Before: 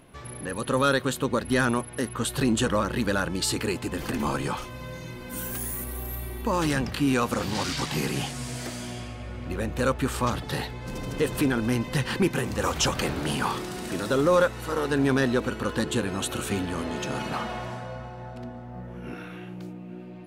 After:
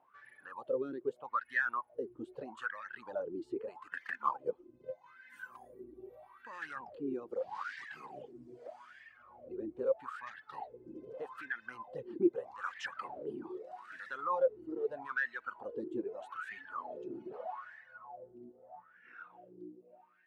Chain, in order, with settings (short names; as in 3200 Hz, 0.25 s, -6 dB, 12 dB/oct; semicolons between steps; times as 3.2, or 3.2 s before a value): wah 0.8 Hz 330–1800 Hz, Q 10; 3.86–5.06 transient shaper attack +7 dB, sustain -4 dB; reverb removal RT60 0.98 s; gain +1.5 dB